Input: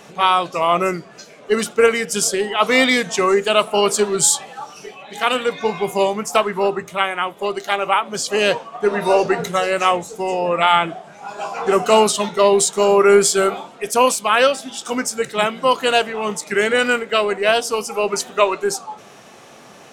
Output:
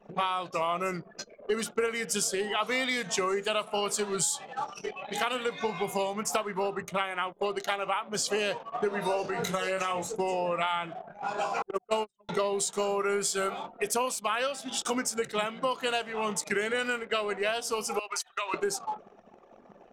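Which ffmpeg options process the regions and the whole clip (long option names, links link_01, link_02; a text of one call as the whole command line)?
ffmpeg -i in.wav -filter_complex "[0:a]asettb=1/sr,asplit=3[link_01][link_02][link_03];[link_01]atrim=end=9.224[link_04];[link_02]atrim=start=9.22:end=10.07,asetpts=PTS-STARTPTS,afade=type=in:duration=0.004:curve=qsin,afade=type=out:start_time=0.846:duration=0.004:curve=qsin,asplit=2[link_05][link_06];[link_06]adelay=21,volume=-4.5dB[link_07];[link_05][link_07]amix=inputs=2:normalize=0,atrim=end_sample=37485,acompressor=threshold=-17dB:ratio=6:attack=3.2:release=140:knee=1:detection=peak[link_08];[link_03]atrim=start=10.066[link_09];[link_04][link_08]acrossfade=duration=0.004:curve1=hsin:curve2=qsin[link_10];[link_10][link_09]acrossfade=duration=0.004:curve1=qsin:curve2=hsin,asettb=1/sr,asplit=3[link_11][link_12][link_13];[link_11]atrim=end=11.624[link_14];[link_12]atrim=start=11.62:end=12.29,asetpts=PTS-STARTPTS,afade=type=in:duration=0.004:curve=qsin,afade=type=out:start_time=0.666:duration=0.004:curve=qsin,agate=range=-27dB:threshold=-12dB:ratio=16:release=100:detection=peak,equalizer=frequency=190:width=2:gain=-3[link_15];[link_13]atrim=start=12.286[link_16];[link_14][link_15]acrossfade=duration=0.004:curve1=hsin:curve2=qsin[link_17];[link_17][link_16]acrossfade=duration=0.004:curve1=qsin:curve2=hsin,asettb=1/sr,asplit=3[link_18][link_19][link_20];[link_18]atrim=end=17.994[link_21];[link_19]atrim=start=17.99:end=18.54,asetpts=PTS-STARTPTS,afade=type=in:duration=0.004:curve=qsin,afade=type=out:start_time=0.546:duration=0.004:curve=qsin,highpass=1200,bandreject=frequency=7100:width=16,acompressor=threshold=-27dB:ratio=5:attack=3.2:release=140:knee=1:detection=peak[link_22];[link_20]atrim=start=18.536[link_23];[link_21][link_22]acrossfade=duration=0.004:curve1=hsin:curve2=qsin[link_24];[link_24][link_23]acrossfade=duration=0.004:curve1=qsin:curve2=hsin,anlmdn=1.58,adynamicequalizer=threshold=0.0355:dfrequency=340:dqfactor=0.99:tfrequency=340:tqfactor=0.99:attack=5:release=100:ratio=0.375:range=3:mode=cutabove:tftype=bell,acompressor=threshold=-27dB:ratio=6" out.wav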